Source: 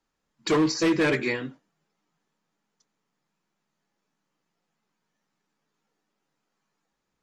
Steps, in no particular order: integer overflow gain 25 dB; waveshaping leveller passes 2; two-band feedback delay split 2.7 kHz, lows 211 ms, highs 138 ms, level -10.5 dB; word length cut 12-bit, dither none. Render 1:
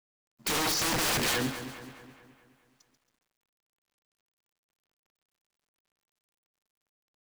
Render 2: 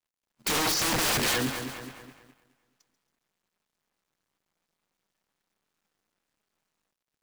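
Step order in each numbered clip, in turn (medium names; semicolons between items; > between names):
integer overflow > waveshaping leveller > two-band feedback delay > word length cut; integer overflow > two-band feedback delay > word length cut > waveshaping leveller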